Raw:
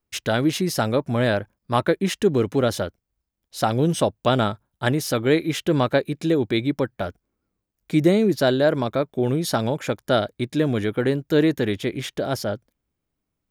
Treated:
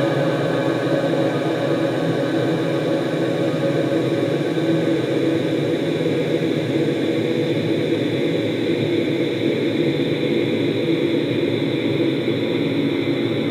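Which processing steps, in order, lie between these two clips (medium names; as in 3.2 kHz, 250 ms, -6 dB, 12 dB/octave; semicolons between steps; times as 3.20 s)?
two-band feedback delay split 450 Hz, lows 204 ms, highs 121 ms, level -3 dB; Paulstretch 23×, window 1.00 s, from 6.11 s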